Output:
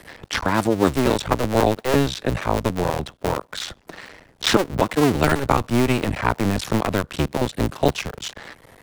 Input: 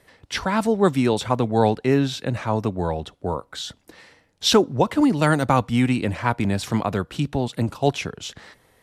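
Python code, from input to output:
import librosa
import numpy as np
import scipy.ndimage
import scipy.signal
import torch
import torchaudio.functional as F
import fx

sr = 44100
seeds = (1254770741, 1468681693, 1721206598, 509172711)

y = fx.cycle_switch(x, sr, every=2, mode='muted')
y = fx.band_squash(y, sr, depth_pct=40)
y = y * librosa.db_to_amplitude(3.5)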